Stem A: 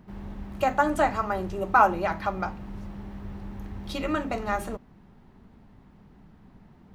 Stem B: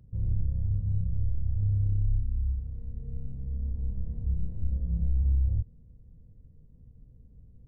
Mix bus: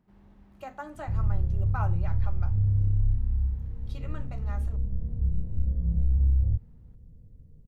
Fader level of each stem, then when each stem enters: -17.0 dB, +2.5 dB; 0.00 s, 0.95 s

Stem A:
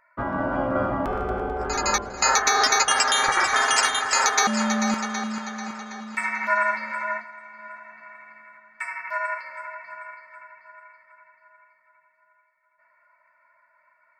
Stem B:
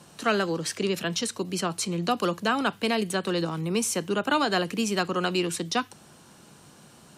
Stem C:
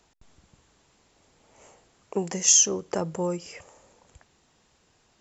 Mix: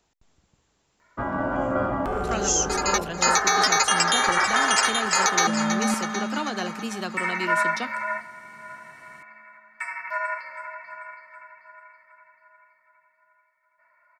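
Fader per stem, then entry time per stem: -0.5 dB, -6.0 dB, -6.0 dB; 1.00 s, 2.05 s, 0.00 s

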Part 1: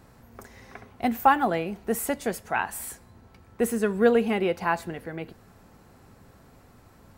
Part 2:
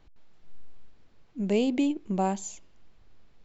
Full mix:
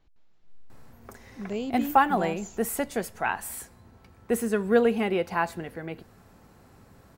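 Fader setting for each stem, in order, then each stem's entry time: -1.0 dB, -7.0 dB; 0.70 s, 0.00 s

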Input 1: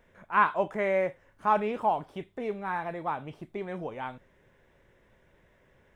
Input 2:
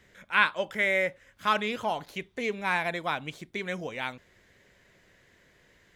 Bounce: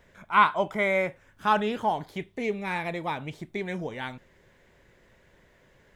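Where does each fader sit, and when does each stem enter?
+2.0 dB, -4.5 dB; 0.00 s, 0.00 s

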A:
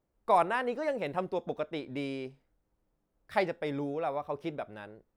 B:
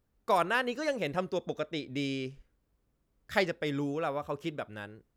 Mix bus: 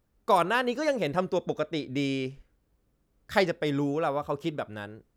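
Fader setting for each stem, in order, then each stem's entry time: -5.5 dB, +3.0 dB; 0.00 s, 0.00 s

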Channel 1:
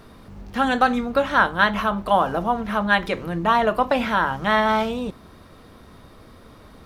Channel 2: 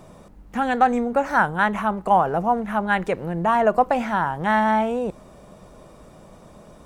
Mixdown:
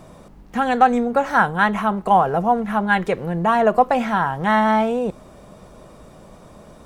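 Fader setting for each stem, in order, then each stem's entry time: -9.5 dB, +2.0 dB; 0.00 s, 0.00 s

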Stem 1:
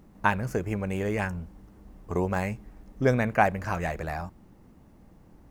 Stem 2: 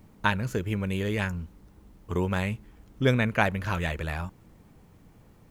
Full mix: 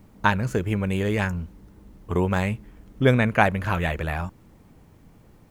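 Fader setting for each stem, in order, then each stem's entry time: -5.0 dB, +1.5 dB; 0.00 s, 0.00 s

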